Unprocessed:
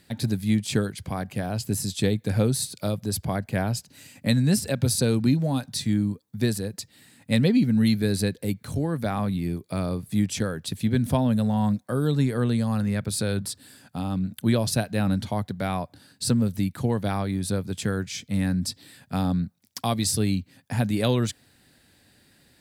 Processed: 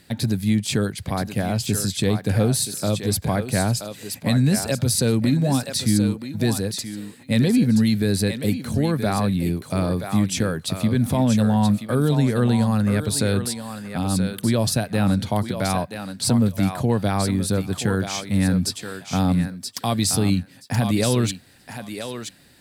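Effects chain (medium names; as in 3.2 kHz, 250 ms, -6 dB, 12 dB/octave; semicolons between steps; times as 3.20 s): peak limiter -16 dBFS, peak gain reduction 7 dB; on a send: thinning echo 977 ms, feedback 17%, high-pass 470 Hz, level -6 dB; on the sum: trim +5 dB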